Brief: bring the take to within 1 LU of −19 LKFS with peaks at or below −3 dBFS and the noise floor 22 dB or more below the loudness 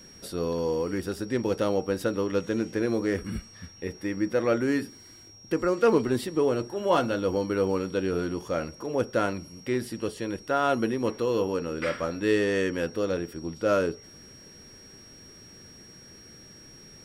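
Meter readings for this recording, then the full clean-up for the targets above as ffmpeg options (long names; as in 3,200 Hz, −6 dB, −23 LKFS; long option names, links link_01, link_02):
interfering tone 5,600 Hz; level of the tone −49 dBFS; integrated loudness −28.0 LKFS; sample peak −11.0 dBFS; target loudness −19.0 LKFS
→ -af "bandreject=frequency=5600:width=30"
-af "volume=9dB,alimiter=limit=-3dB:level=0:latency=1"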